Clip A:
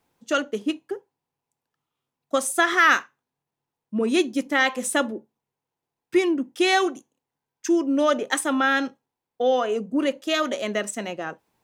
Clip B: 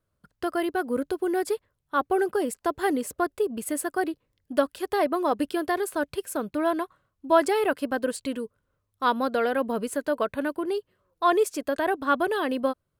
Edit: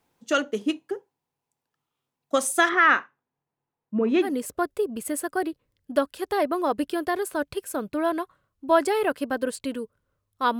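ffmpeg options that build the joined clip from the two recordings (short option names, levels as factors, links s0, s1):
-filter_complex "[0:a]asplit=3[s0][s1][s2];[s0]afade=t=out:st=2.68:d=0.02[s3];[s1]lowpass=2200,afade=t=in:st=2.68:d=0.02,afade=t=out:st=4.36:d=0.02[s4];[s2]afade=t=in:st=4.36:d=0.02[s5];[s3][s4][s5]amix=inputs=3:normalize=0,apad=whole_dur=10.59,atrim=end=10.59,atrim=end=4.36,asetpts=PTS-STARTPTS[s6];[1:a]atrim=start=2.79:end=9.2,asetpts=PTS-STARTPTS[s7];[s6][s7]acrossfade=d=0.18:c1=tri:c2=tri"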